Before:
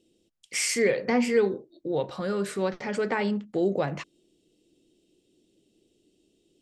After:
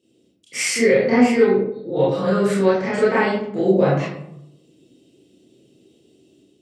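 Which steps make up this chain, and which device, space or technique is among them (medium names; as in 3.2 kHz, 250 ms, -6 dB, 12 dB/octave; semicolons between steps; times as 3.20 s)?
far laptop microphone (reverberation RT60 0.75 s, pre-delay 24 ms, DRR -9.5 dB; high-pass 100 Hz; level rider gain up to 5 dB); peaking EQ 120 Hz +4.5 dB 1 oct; trim -3 dB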